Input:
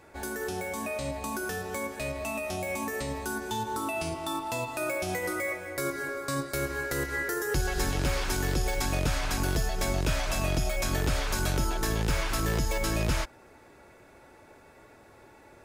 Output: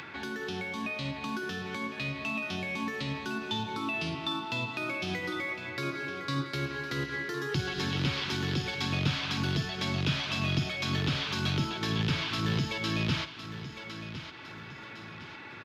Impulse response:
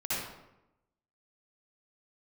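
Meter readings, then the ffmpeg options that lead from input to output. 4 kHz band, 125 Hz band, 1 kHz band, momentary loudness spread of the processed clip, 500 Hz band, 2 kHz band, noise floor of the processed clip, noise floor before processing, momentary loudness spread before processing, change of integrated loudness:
+4.5 dB, +0.5 dB, -3.5 dB, 11 LU, -6.5 dB, -0.5 dB, -45 dBFS, -55 dBFS, 5 LU, -1.5 dB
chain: -filter_complex "[0:a]aresample=32000,aresample=44100,highpass=f=110:w=0.5412,highpass=f=110:w=1.3066,lowshelf=f=150:g=-3,acrossover=split=880|3300[a][b][c];[b]acompressor=threshold=-49dB:ratio=5[d];[a][d][c]amix=inputs=3:normalize=0,firequalizer=gain_entry='entry(150,0);entry(570,-15);entry(1100,-1);entry(3200,6);entry(8100,-26)':delay=0.05:min_phase=1,aecho=1:1:1058|2116|3174:0.251|0.0678|0.0183,acompressor=mode=upward:threshold=-42dB:ratio=2.5,volume=5.5dB"

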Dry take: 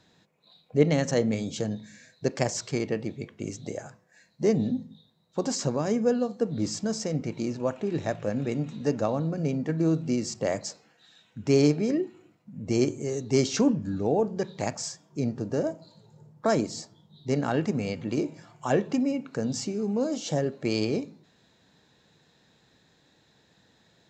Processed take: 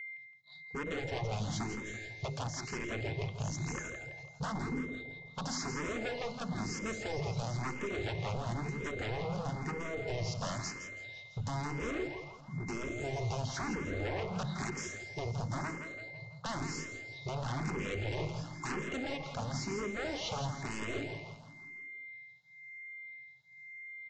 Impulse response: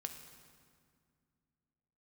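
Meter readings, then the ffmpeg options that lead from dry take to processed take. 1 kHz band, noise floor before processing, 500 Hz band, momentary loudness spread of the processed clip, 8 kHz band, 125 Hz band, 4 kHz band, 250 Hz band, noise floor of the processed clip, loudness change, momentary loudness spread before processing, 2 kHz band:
-3.5 dB, -64 dBFS, -12.5 dB, 9 LU, -8.0 dB, -6.0 dB, -5.0 dB, -13.5 dB, -54 dBFS, -10.5 dB, 12 LU, +1.0 dB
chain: -filter_complex "[0:a]lowpass=5.4k,acrossover=split=3000[a][b];[b]acompressor=threshold=-51dB:ratio=4:attack=1:release=60[c];[a][c]amix=inputs=2:normalize=0,aemphasis=mode=production:type=75fm,agate=range=-33dB:threshold=-48dB:ratio=3:detection=peak,lowshelf=f=170:t=q:w=3:g=6.5,bandreject=f=50:t=h:w=6,bandreject=f=100:t=h:w=6,bandreject=f=150:t=h:w=6,bandreject=f=200:t=h:w=6,bandreject=f=250:t=h:w=6,bandreject=f=300:t=h:w=6,bandreject=f=350:t=h:w=6,bandreject=f=400:t=h:w=6,acompressor=threshold=-26dB:ratio=10,aresample=16000,aeval=exprs='0.0251*(abs(mod(val(0)/0.0251+3,4)-2)-1)':c=same,aresample=44100,aeval=exprs='val(0)+0.00708*sin(2*PI*2100*n/s)':c=same,asplit=2[d][e];[e]aecho=0:1:166|332|498|664|830|996:0.422|0.207|0.101|0.0496|0.0243|0.0119[f];[d][f]amix=inputs=2:normalize=0,asplit=2[g][h];[h]afreqshift=1[i];[g][i]amix=inputs=2:normalize=1,volume=2.5dB"

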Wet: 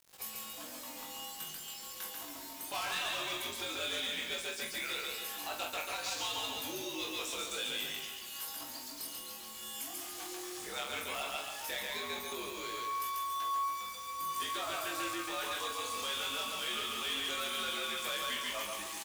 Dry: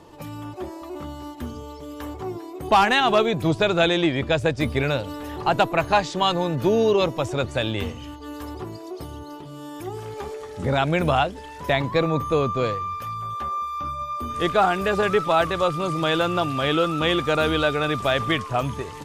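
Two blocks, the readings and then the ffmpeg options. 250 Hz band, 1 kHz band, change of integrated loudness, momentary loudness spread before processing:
-22.5 dB, -15.0 dB, -14.5 dB, 16 LU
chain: -filter_complex "[0:a]equalizer=f=420:t=o:w=0.39:g=2,asplit=2[a][b];[b]acompressor=threshold=-31dB:ratio=6,volume=2dB[c];[a][c]amix=inputs=2:normalize=0,afreqshift=-77,aecho=1:1:139|278|417|556|695:0.668|0.287|0.124|0.0531|0.0228,alimiter=limit=-8.5dB:level=0:latency=1:release=130,aderivative,asplit=2[d][e];[e]adelay=44,volume=-8dB[f];[d][f]amix=inputs=2:normalize=0,asoftclip=type=tanh:threshold=-31dB,acrusher=bits=7:mix=0:aa=0.000001,flanger=delay=19:depth=3.1:speed=0.15,volume=3dB"

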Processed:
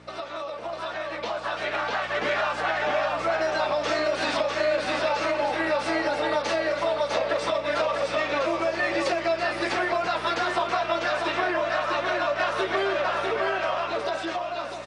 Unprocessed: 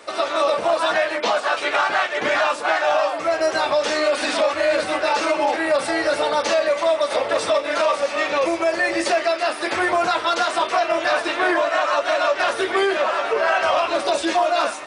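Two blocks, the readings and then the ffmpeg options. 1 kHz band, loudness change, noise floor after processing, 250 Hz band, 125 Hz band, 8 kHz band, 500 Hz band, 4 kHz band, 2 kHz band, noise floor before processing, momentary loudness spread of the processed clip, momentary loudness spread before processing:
-6.0 dB, -6.0 dB, -34 dBFS, -5.0 dB, n/a, -10.0 dB, -6.0 dB, -6.0 dB, -5.5 dB, -30 dBFS, 5 LU, 2 LU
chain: -filter_complex "[0:a]aeval=exprs='val(0)+0.0158*(sin(2*PI*60*n/s)+sin(2*PI*2*60*n/s)/2+sin(2*PI*3*60*n/s)/3+sin(2*PI*4*60*n/s)/4+sin(2*PI*5*60*n/s)/5)':c=same,acompressor=threshold=-23dB:ratio=6,highpass=130,lowpass=5.6k,asplit=2[a][b];[b]aecho=0:1:649:0.631[c];[a][c]amix=inputs=2:normalize=0,dynaudnorm=f=110:g=31:m=8dB,volume=-8dB"

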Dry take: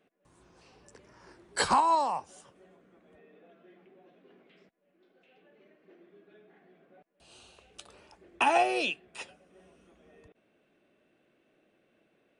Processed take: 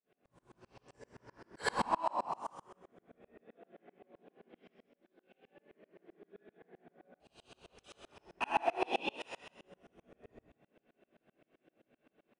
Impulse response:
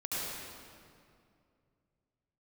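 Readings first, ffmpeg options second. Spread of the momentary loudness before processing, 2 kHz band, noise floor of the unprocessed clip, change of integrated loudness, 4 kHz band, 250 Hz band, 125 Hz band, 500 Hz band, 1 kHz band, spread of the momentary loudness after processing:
20 LU, -7.5 dB, -72 dBFS, -9.0 dB, -9.0 dB, -6.0 dB, n/a, -6.5 dB, -8.5 dB, 16 LU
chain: -filter_complex "[0:a]asplit=5[a][b][c][d][e];[b]adelay=140,afreqshift=59,volume=-9dB[f];[c]adelay=280,afreqshift=118,volume=-18.4dB[g];[d]adelay=420,afreqshift=177,volume=-27.7dB[h];[e]adelay=560,afreqshift=236,volume=-37.1dB[i];[a][f][g][h][i]amix=inputs=5:normalize=0,asoftclip=type=tanh:threshold=-18dB,highshelf=f=4.7k:g=-10.5[j];[1:a]atrim=start_sample=2205,afade=t=out:st=0.39:d=0.01,atrim=end_sample=17640,asetrate=61740,aresample=44100[k];[j][k]afir=irnorm=-1:irlink=0,acompressor=threshold=-28dB:ratio=4,aeval=exprs='val(0)*pow(10,-32*if(lt(mod(-7.7*n/s,1),2*abs(-7.7)/1000),1-mod(-7.7*n/s,1)/(2*abs(-7.7)/1000),(mod(-7.7*n/s,1)-2*abs(-7.7)/1000)/(1-2*abs(-7.7)/1000))/20)':c=same,volume=5dB"

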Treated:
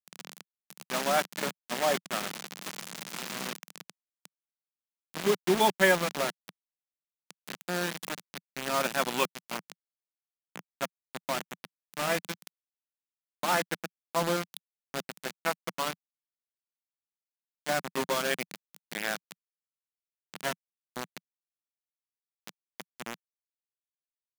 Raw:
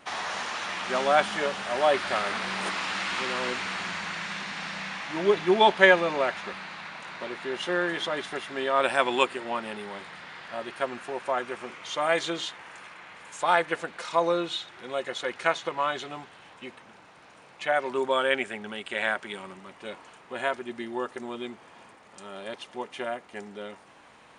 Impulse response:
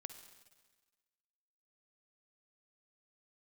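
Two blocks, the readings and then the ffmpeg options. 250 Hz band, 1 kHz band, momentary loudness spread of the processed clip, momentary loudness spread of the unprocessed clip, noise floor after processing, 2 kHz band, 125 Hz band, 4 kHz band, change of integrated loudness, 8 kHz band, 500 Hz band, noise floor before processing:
-3.5 dB, -6.0 dB, 19 LU, 18 LU, under -85 dBFS, -6.0 dB, +1.0 dB, -4.5 dB, -4.0 dB, +4.5 dB, -6.0 dB, -53 dBFS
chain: -af "acrusher=bits=3:mix=0:aa=0.000001,lowshelf=f=120:t=q:w=3:g=-13.5,volume=-6dB"

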